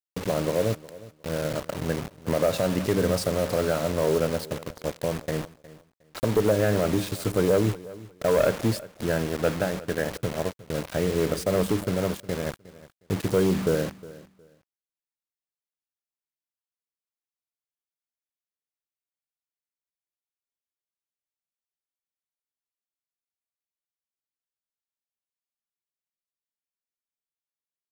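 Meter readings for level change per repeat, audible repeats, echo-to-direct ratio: -13.5 dB, 2, -19.0 dB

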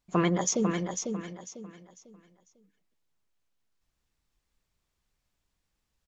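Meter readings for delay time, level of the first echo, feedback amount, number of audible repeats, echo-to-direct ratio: 498 ms, -6.0 dB, 30%, 3, -5.5 dB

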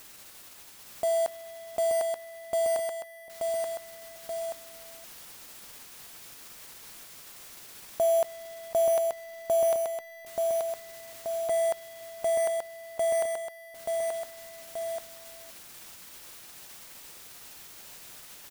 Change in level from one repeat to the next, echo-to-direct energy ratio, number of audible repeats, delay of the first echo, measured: -4.5 dB, -2.0 dB, 2, 880 ms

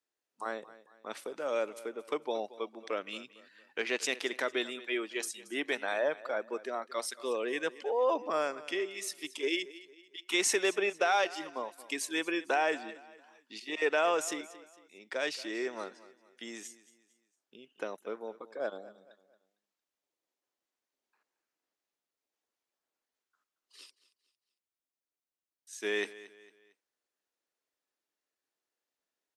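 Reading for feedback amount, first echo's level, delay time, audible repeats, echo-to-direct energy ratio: 39%, -18.0 dB, 227 ms, 3, -17.5 dB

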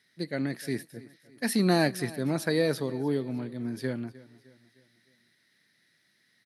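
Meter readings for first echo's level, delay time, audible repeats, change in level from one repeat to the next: -19.5 dB, 306 ms, 3, -6.5 dB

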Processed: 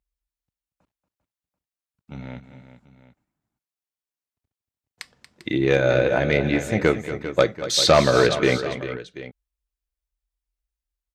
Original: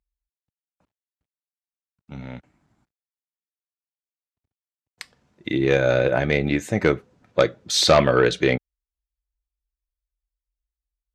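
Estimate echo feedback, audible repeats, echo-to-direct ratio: no regular repeats, 3, -9.0 dB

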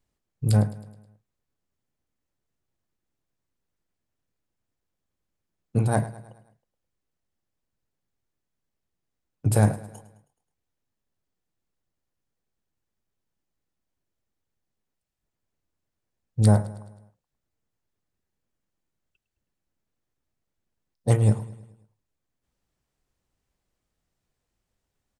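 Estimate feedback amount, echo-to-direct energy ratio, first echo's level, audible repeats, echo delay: 52%, -15.5 dB, -17.0 dB, 4, 106 ms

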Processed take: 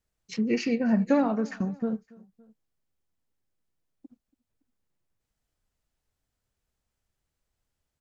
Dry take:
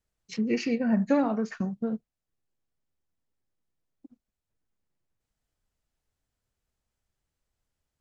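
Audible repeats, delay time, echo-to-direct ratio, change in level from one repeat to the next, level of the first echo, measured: 2, 282 ms, -22.0 dB, -4.5 dB, -23.5 dB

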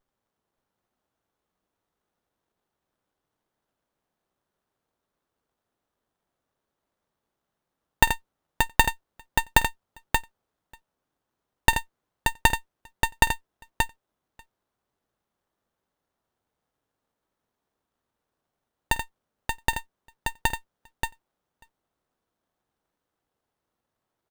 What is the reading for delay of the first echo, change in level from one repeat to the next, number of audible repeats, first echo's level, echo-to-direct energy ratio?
50 ms, no regular repeats, 3, -19.0 dB, -3.5 dB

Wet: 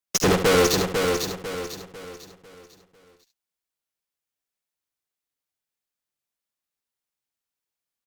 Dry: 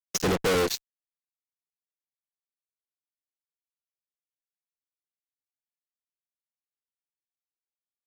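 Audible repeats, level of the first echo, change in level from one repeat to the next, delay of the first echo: 8, -8.5 dB, no regular repeats, 71 ms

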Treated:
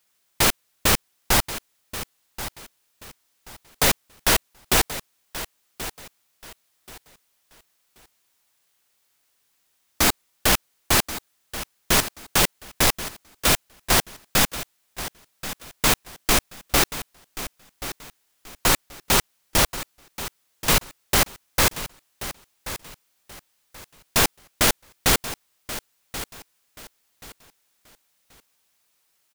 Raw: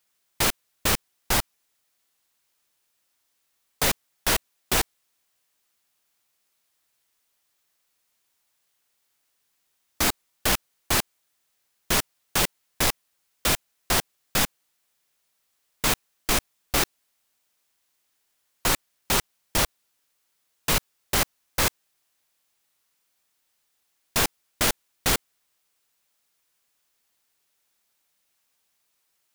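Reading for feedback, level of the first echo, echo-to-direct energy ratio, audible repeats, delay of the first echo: 27%, -13.5 dB, -13.0 dB, 2, 1081 ms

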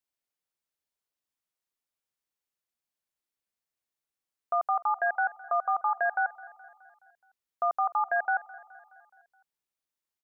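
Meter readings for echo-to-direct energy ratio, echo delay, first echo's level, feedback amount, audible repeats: -18.5 dB, 211 ms, -20.0 dB, 57%, 4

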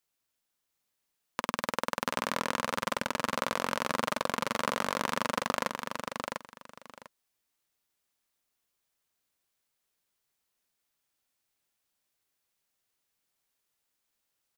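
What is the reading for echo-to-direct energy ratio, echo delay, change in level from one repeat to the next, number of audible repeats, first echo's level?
-5.0 dB, 698 ms, -14.0 dB, 2, -5.0 dB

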